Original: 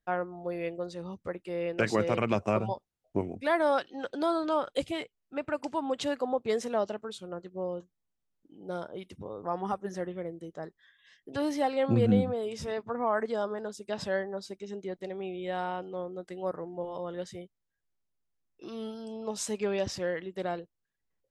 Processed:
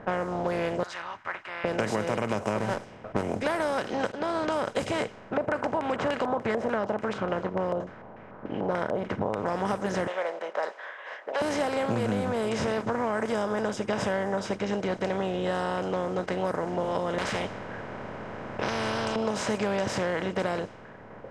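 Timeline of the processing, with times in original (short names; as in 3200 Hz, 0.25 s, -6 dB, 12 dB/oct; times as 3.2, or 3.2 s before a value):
0.83–1.65 inverse Chebyshev high-pass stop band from 520 Hz, stop band 50 dB
2.58–3.23 minimum comb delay 0.36 ms
4.12–4.7 fade in
5.37–9.46 stepped low-pass 6.8 Hz 650–2900 Hz
10.07–11.42 Chebyshev high-pass 550 Hz, order 5
13.24–14.53 Butterworth band-stop 4200 Hz, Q 5.8
15.17–15.78 Butterworth band-stop 2300 Hz, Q 3.9
17.18–19.16 spectral compressor 10:1
whole clip: per-bin compression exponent 0.4; low-pass opened by the level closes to 1400 Hz, open at -18.5 dBFS; compressor, threshold -24 dBFS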